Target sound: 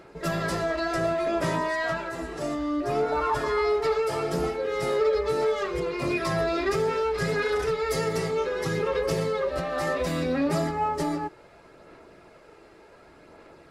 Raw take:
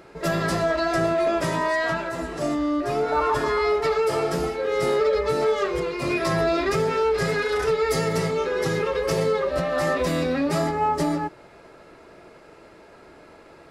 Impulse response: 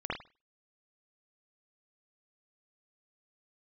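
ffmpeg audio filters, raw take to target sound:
-af "aphaser=in_gain=1:out_gain=1:delay=2.6:decay=0.27:speed=0.67:type=sinusoidal,volume=0.631"

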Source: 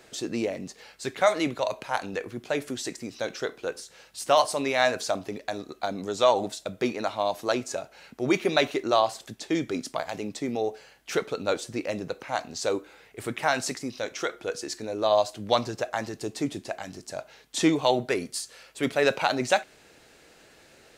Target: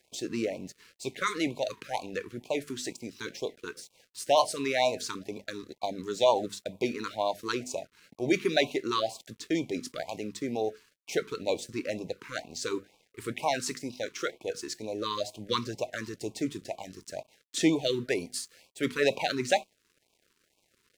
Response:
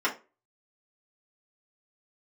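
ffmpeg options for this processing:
-af "bandreject=f=50:t=h:w=6,bandreject=f=100:t=h:w=6,bandreject=f=150:t=h:w=6,bandreject=f=200:t=h:w=6,bandreject=f=250:t=h:w=6,aeval=exprs='sgn(val(0))*max(abs(val(0))-0.00266,0)':c=same,afftfilt=real='re*(1-between(b*sr/1024,630*pow(1600/630,0.5+0.5*sin(2*PI*2.1*pts/sr))/1.41,630*pow(1600/630,0.5+0.5*sin(2*PI*2.1*pts/sr))*1.41))':imag='im*(1-between(b*sr/1024,630*pow(1600/630,0.5+0.5*sin(2*PI*2.1*pts/sr))/1.41,630*pow(1600/630,0.5+0.5*sin(2*PI*2.1*pts/sr))*1.41))':win_size=1024:overlap=0.75,volume=0.794"

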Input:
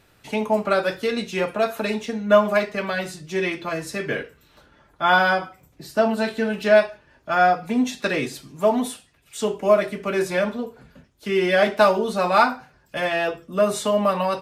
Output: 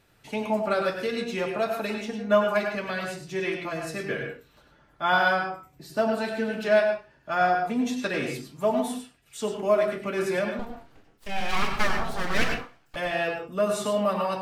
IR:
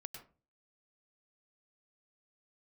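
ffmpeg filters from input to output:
-filter_complex "[0:a]asettb=1/sr,asplit=3[s0][s1][s2];[s0]atrim=end=10.594[s3];[s1]atrim=start=10.59:end=12.96,asetpts=PTS-STARTPTS,afade=t=in:d=0.004:c=qsin,afade=t=out:st=2.366:d=0.004:c=qsin,aeval=exprs='abs(val(0))':c=same[s4];[s2]atrim=start=12.956[s5];[s3][s4]acrossfade=d=0.004:c1=hsin:c2=qsin[s6];[s6][s5]acrossfade=d=0.004:c1=qsin:c2=hsin[s7];[1:a]atrim=start_sample=2205,afade=t=out:st=0.24:d=0.01,atrim=end_sample=11025[s8];[s7][s8]afir=irnorm=-1:irlink=0"

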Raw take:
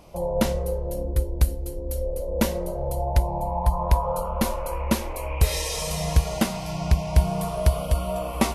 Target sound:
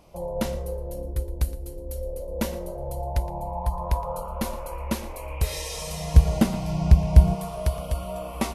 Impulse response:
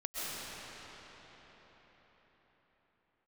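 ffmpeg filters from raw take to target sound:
-filter_complex "[0:a]asettb=1/sr,asplit=3[s0][s1][s2];[s0]atrim=end=6.144[s3];[s1]atrim=start=6.14:end=7.35,asetpts=PTS-STARTPTS,afade=t=in:d=0.004:c=qsin,afade=t=out:st=1.206:d=0.004:c=qsin,lowshelf=f=500:g=10.5[s4];[s2]atrim=start=7.346[s5];[s3][s4]acrossfade=d=0.004:c1=hsin:c2=qsin[s6];[s6][s5]acrossfade=d=0.004:c1=qsin:c2=hsin,asplit=2[s7][s8];[s8]aecho=0:1:117:0.141[s9];[s7][s9]amix=inputs=2:normalize=0,volume=0.562"

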